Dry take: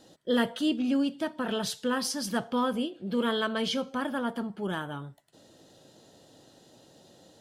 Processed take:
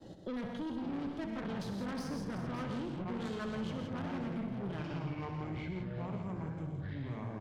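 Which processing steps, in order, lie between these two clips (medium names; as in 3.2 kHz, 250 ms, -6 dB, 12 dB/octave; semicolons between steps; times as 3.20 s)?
Doppler pass-by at 2.18 s, 9 m/s, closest 5.1 m; RIAA curve playback; expander -57 dBFS; dynamic bell 1.4 kHz, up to +4 dB, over -47 dBFS, Q 2.1; reverse; compression, threshold -35 dBFS, peak gain reduction 15 dB; reverse; ever faster or slower copies 416 ms, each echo -6 st, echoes 3, each echo -6 dB; valve stage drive 42 dB, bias 0.5; on a send: multi-tap echo 64/101/123/165/385/560 ms -9.5/-12/-10.5/-8.5/-20/-19.5 dB; on the sum: three bands compressed up and down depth 70%; trim +4.5 dB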